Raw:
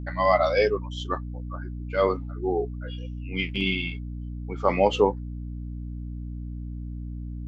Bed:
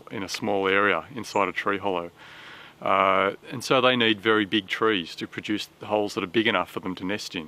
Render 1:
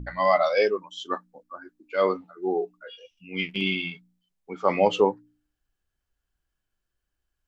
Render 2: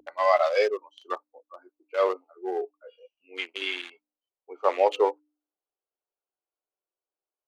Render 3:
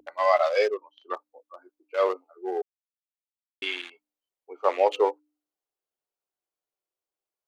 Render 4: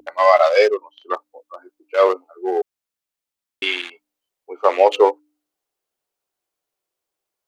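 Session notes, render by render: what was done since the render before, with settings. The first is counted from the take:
de-hum 60 Hz, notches 5
Wiener smoothing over 25 samples; inverse Chebyshev high-pass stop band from 200 Hz, stop band 40 dB
0.74–1.14 air absorption 250 m; 2.62–3.62 mute
gain +9 dB; limiter -1 dBFS, peak gain reduction 3 dB

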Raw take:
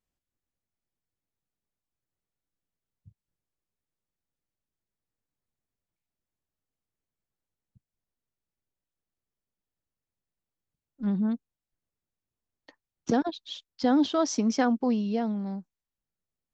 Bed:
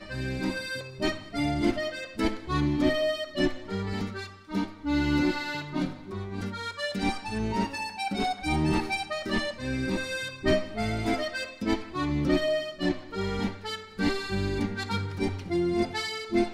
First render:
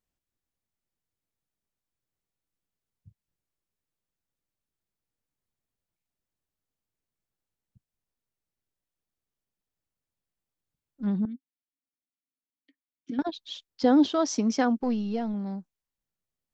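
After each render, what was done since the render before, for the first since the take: 11.25–13.19 vowel filter i; 13.71–14.11 bell 410 Hz +7.5 dB; 14.81–15.34 half-wave gain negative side -3 dB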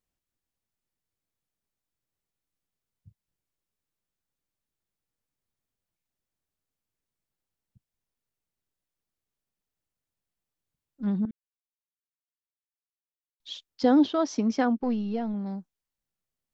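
11.31–13.4 mute; 13.99–15.46 air absorption 120 m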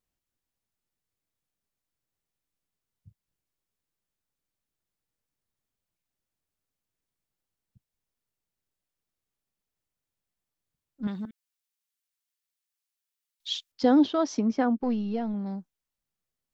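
11.07–13.72 tilt shelf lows -9 dB, about 910 Hz; 14.39–14.8 high shelf 2700 Hz -10 dB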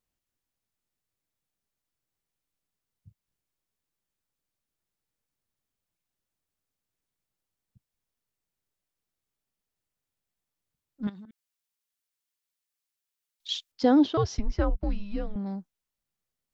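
11.09–13.49 compressor 16:1, threshold -42 dBFS; 14.17–15.36 frequency shift -200 Hz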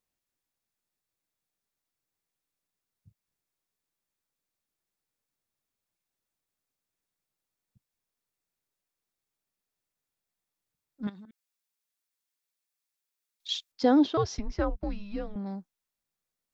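low shelf 150 Hz -7.5 dB; notch 3000 Hz, Q 18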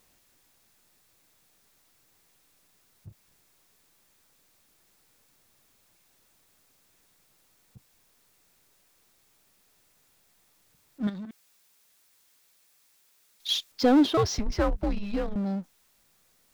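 power-law curve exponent 0.7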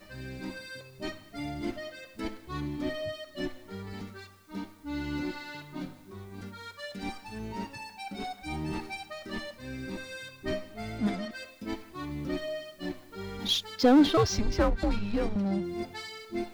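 add bed -9 dB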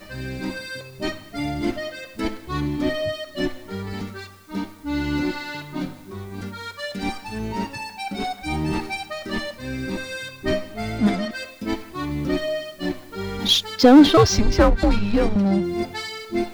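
gain +10 dB; limiter -3 dBFS, peak gain reduction 1.5 dB

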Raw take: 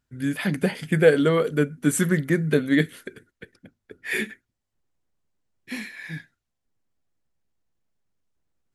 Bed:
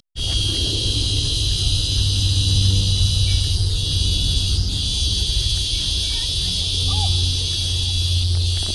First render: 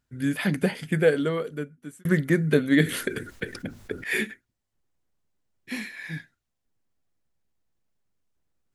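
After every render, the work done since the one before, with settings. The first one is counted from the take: 0.49–2.05 fade out; 2.77–4.04 fast leveller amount 50%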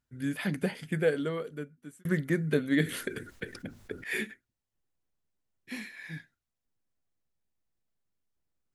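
gain -6.5 dB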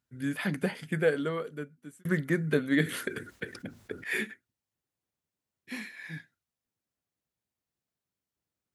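HPF 78 Hz; dynamic EQ 1200 Hz, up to +4 dB, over -47 dBFS, Q 1.1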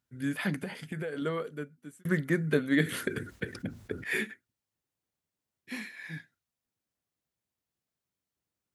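0.59–1.22 compressor 16:1, threshold -31 dBFS; 2.92–4.19 low shelf 210 Hz +10 dB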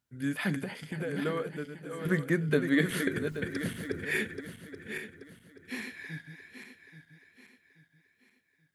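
regenerating reverse delay 0.415 s, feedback 60%, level -7.5 dB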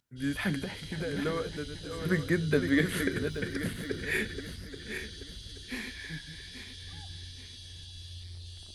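add bed -25.5 dB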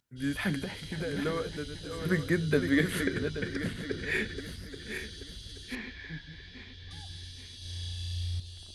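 3–4.38 LPF 7500 Hz; 5.75–6.91 air absorption 200 m; 7.58–8.4 flutter echo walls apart 5.9 m, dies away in 1.3 s

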